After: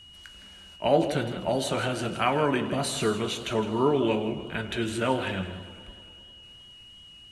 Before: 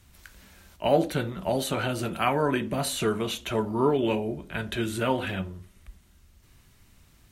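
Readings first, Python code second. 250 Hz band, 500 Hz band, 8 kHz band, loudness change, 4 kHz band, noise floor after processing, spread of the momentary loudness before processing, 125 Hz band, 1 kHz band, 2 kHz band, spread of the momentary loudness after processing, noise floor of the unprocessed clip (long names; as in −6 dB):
0.0 dB, +0.5 dB, −0.5 dB, 0.0 dB, +1.5 dB, −50 dBFS, 8 LU, −0.5 dB, +0.5 dB, +0.5 dB, 22 LU, −59 dBFS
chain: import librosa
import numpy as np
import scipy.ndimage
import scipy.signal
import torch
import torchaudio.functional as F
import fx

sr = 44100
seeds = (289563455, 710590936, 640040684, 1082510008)

y = scipy.signal.sosfilt(scipy.signal.butter(4, 10000.0, 'lowpass', fs=sr, output='sos'), x)
y = fx.low_shelf(y, sr, hz=60.0, db=-5.5)
y = y + 10.0 ** (-48.0 / 20.0) * np.sin(2.0 * np.pi * 2900.0 * np.arange(len(y)) / sr)
y = y + 10.0 ** (-12.0 / 20.0) * np.pad(y, (int(162 * sr / 1000.0), 0))[:len(y)]
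y = fx.echo_warbled(y, sr, ms=100, feedback_pct=78, rate_hz=2.8, cents=161, wet_db=-18.0)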